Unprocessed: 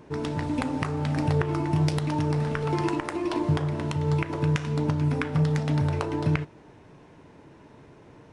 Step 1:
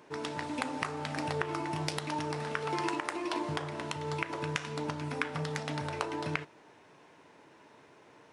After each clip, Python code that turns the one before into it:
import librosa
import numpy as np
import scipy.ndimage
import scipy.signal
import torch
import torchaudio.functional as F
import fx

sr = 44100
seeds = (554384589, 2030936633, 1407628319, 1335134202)

y = fx.highpass(x, sr, hz=840.0, slope=6)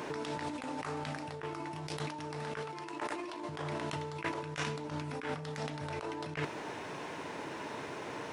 y = fx.over_compress(x, sr, threshold_db=-46.0, ratio=-1.0)
y = F.gain(torch.from_numpy(y), 6.5).numpy()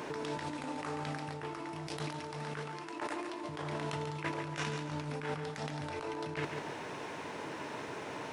y = fx.echo_feedback(x, sr, ms=141, feedback_pct=37, wet_db=-7)
y = F.gain(torch.from_numpy(y), -1.0).numpy()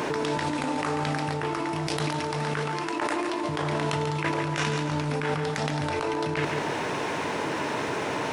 y = fx.env_flatten(x, sr, amount_pct=50)
y = F.gain(torch.from_numpy(y), 8.5).numpy()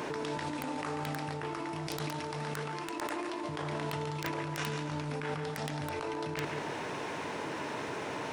y = (np.mod(10.0 ** (14.0 / 20.0) * x + 1.0, 2.0) - 1.0) / 10.0 ** (14.0 / 20.0)
y = F.gain(torch.from_numpy(y), -8.5).numpy()